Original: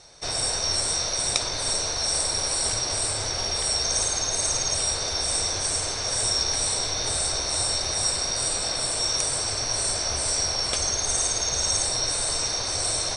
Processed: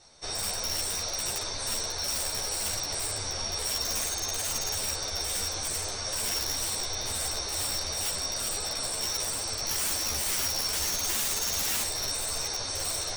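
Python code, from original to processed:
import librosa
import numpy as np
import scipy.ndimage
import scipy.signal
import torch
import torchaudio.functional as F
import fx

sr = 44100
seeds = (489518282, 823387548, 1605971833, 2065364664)

y = fx.high_shelf(x, sr, hz=4600.0, db=5.0, at=(9.65, 11.82))
y = (np.mod(10.0 ** (17.0 / 20.0) * y + 1.0, 2.0) - 1.0) / 10.0 ** (17.0 / 20.0)
y = fx.ensemble(y, sr)
y = y * librosa.db_to_amplitude(-2.5)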